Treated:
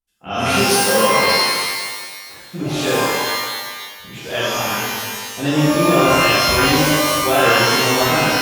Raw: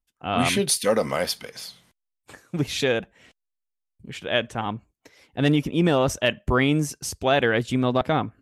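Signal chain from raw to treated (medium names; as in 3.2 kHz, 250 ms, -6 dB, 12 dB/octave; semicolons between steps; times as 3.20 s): pitch-shifted reverb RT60 1.5 s, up +12 st, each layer -2 dB, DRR -10.5 dB; trim -6.5 dB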